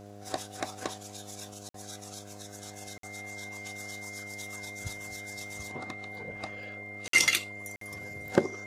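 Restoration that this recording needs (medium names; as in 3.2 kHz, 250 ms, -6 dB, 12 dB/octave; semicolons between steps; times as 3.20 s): de-click; de-hum 101.9 Hz, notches 7; band-stop 2.1 kHz, Q 30; interpolate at 1.69/2.98/7.08/7.76 s, 53 ms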